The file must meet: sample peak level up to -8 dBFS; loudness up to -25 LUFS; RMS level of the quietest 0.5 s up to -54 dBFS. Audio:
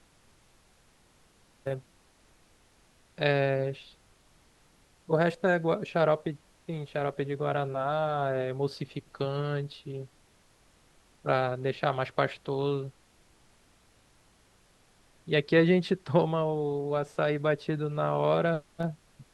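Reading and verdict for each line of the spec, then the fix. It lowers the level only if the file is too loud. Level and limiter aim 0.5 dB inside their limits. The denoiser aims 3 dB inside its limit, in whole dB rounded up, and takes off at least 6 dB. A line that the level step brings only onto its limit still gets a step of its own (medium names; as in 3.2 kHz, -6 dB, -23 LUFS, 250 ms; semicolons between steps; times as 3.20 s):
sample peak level -10.5 dBFS: pass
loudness -29.5 LUFS: pass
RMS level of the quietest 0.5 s -63 dBFS: pass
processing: none needed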